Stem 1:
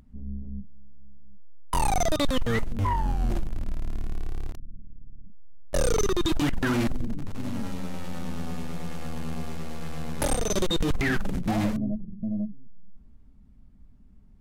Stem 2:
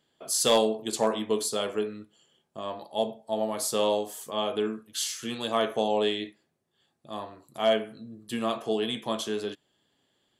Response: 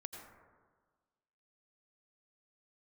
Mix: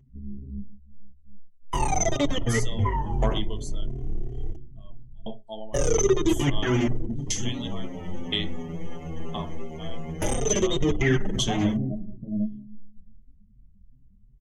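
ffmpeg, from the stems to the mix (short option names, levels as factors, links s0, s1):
-filter_complex "[0:a]equalizer=f=400:t=o:w=0.67:g=9,equalizer=f=1600:t=o:w=0.67:g=-4,equalizer=f=4000:t=o:w=0.67:g=-8,equalizer=f=10000:t=o:w=0.67:g=-6,asplit=2[s0][s1];[s1]adelay=5.4,afreqshift=2.8[s2];[s0][s2]amix=inputs=2:normalize=1,volume=1.06,asplit=2[s3][s4];[s4]volume=0.335[s5];[1:a]alimiter=limit=0.126:level=0:latency=1,aeval=exprs='val(0)*pow(10,-37*if(lt(mod(0.98*n/s,1),2*abs(0.98)/1000),1-mod(0.98*n/s,1)/(2*abs(0.98)/1000),(mod(0.98*n/s,1)-2*abs(0.98)/1000)/(1-2*abs(0.98)/1000))/20)':c=same,adelay=2200,volume=1.41[s6];[2:a]atrim=start_sample=2205[s7];[s5][s7]afir=irnorm=-1:irlink=0[s8];[s3][s6][s8]amix=inputs=3:normalize=0,equalizer=f=125:t=o:w=0.33:g=10,equalizer=f=500:t=o:w=0.33:g=-4,equalizer=f=2000:t=o:w=0.33:g=7,equalizer=f=3150:t=o:w=0.33:g=9,equalizer=f=6300:t=o:w=0.33:g=10,afftdn=nr=17:nf=-43,bandreject=f=60:t=h:w=6,bandreject=f=120:t=h:w=6,bandreject=f=180:t=h:w=6,bandreject=f=240:t=h:w=6,bandreject=f=300:t=h:w=6,bandreject=f=360:t=h:w=6,bandreject=f=420:t=h:w=6"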